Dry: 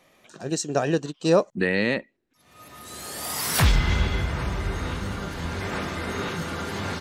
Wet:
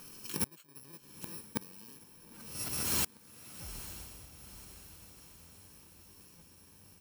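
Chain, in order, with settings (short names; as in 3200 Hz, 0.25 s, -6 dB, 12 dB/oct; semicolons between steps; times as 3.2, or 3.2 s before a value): FFT order left unsorted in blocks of 64 samples; flipped gate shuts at -26 dBFS, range -38 dB; diffused feedback echo 0.919 s, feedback 52%, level -13 dB; gain +8.5 dB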